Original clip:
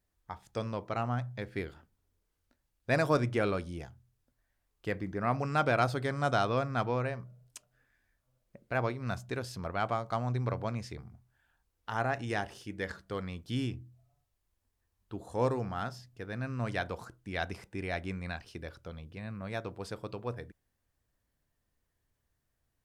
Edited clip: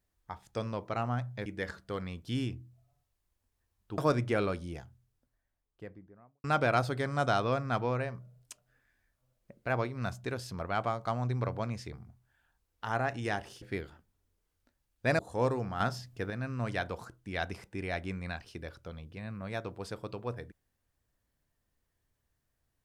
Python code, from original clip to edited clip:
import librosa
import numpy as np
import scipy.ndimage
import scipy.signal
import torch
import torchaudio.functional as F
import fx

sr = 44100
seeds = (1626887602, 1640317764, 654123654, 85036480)

y = fx.studio_fade_out(x, sr, start_s=3.86, length_s=1.63)
y = fx.edit(y, sr, fx.swap(start_s=1.46, length_s=1.57, other_s=12.67, other_length_s=2.52),
    fx.clip_gain(start_s=15.8, length_s=0.5, db=6.5), tone=tone)